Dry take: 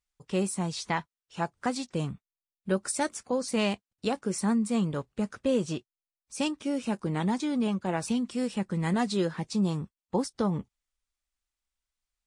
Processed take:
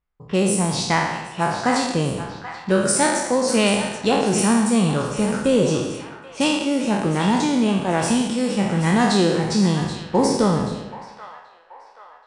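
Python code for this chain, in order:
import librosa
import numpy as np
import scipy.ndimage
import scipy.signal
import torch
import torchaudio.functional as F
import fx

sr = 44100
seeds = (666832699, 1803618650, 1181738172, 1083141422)

y = fx.spec_trails(x, sr, decay_s=1.01)
y = fx.echo_split(y, sr, split_hz=750.0, low_ms=98, high_ms=781, feedback_pct=52, wet_db=-11.0)
y = fx.env_lowpass(y, sr, base_hz=1500.0, full_db=-26.5)
y = y * librosa.db_to_amplitude(7.5)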